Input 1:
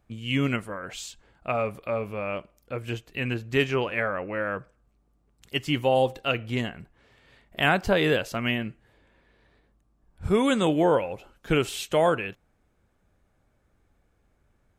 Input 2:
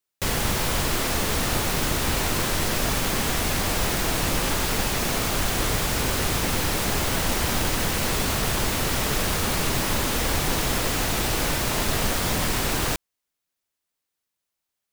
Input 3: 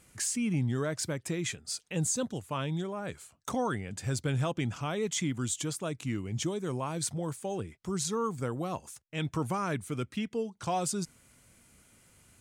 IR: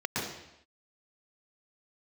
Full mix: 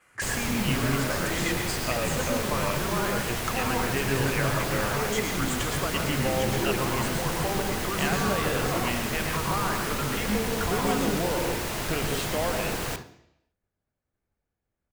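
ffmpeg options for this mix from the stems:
-filter_complex "[0:a]adelay=400,volume=0.5dB,asplit=2[link_01][link_02];[link_02]volume=-21dB[link_03];[1:a]volume=-8.5dB,asplit=2[link_04][link_05];[link_05]volume=-13.5dB[link_06];[2:a]equalizer=frequency=1300:width_type=o:width=1.9:gain=14.5,acompressor=threshold=-33dB:ratio=6,volume=-0.5dB,asplit=2[link_07][link_08];[link_08]volume=-4.5dB[link_09];[link_01][link_07]amix=inputs=2:normalize=0,agate=range=-33dB:threshold=-57dB:ratio=3:detection=peak,acompressor=threshold=-30dB:ratio=6,volume=0dB[link_10];[3:a]atrim=start_sample=2205[link_11];[link_03][link_06][link_09]amix=inputs=3:normalize=0[link_12];[link_12][link_11]afir=irnorm=-1:irlink=0[link_13];[link_04][link_10][link_13]amix=inputs=3:normalize=0,agate=range=-9dB:threshold=-35dB:ratio=16:detection=peak"

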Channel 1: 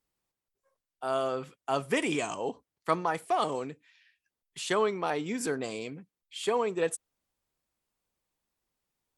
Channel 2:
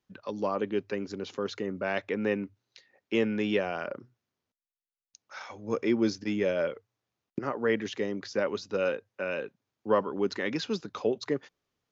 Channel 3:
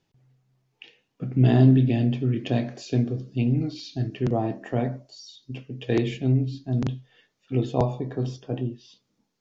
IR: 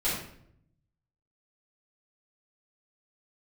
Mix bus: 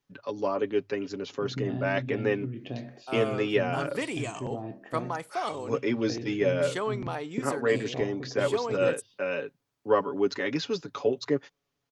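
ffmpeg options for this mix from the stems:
-filter_complex "[0:a]adelay=2050,volume=-4dB[link_01];[1:a]aecho=1:1:7.1:0.63,volume=0dB[link_02];[2:a]lowpass=4100,acompressor=threshold=-23dB:ratio=6,adelay=200,volume=-8.5dB[link_03];[link_01][link_02][link_03]amix=inputs=3:normalize=0"

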